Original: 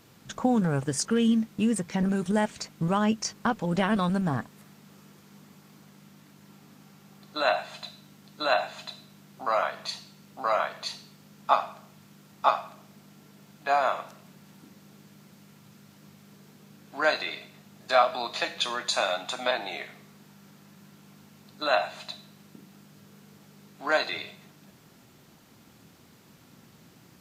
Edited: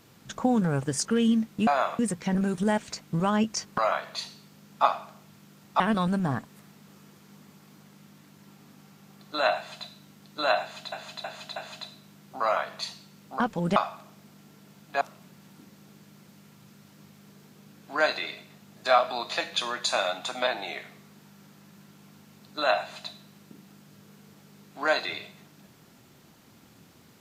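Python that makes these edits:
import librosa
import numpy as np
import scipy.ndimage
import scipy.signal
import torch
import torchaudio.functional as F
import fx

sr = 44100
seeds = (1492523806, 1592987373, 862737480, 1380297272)

y = fx.edit(x, sr, fx.swap(start_s=3.46, length_s=0.36, other_s=10.46, other_length_s=2.02),
    fx.repeat(start_s=8.62, length_s=0.32, count=4),
    fx.move(start_s=13.73, length_s=0.32, to_s=1.67), tone=tone)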